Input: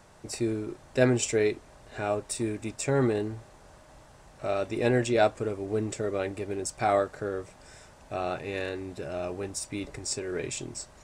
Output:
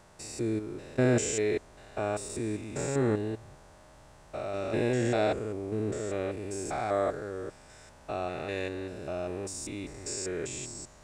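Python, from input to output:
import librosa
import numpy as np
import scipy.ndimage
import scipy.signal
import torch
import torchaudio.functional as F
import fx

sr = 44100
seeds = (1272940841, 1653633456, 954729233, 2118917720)

y = fx.spec_steps(x, sr, hold_ms=200)
y = fx.dynamic_eq(y, sr, hz=7100.0, q=3.1, threshold_db=-58.0, ratio=4.0, max_db=5)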